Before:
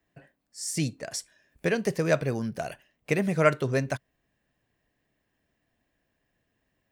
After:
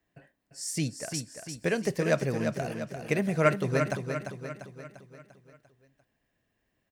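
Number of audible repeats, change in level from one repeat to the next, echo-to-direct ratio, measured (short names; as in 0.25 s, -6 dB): 5, -6.0 dB, -5.5 dB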